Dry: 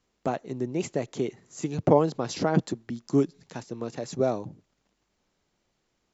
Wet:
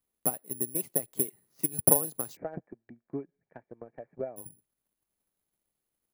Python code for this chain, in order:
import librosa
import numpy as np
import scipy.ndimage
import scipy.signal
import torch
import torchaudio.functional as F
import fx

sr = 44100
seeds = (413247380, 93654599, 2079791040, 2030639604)

y = (np.kron(scipy.signal.resample_poly(x, 1, 4), np.eye(4)[0]) * 4)[:len(x)]
y = fx.cheby_ripple(y, sr, hz=2400.0, ripple_db=9, at=(2.35, 4.36), fade=0.02)
y = fx.transient(y, sr, attack_db=11, sustain_db=-1)
y = y * librosa.db_to_amplitude(-15.5)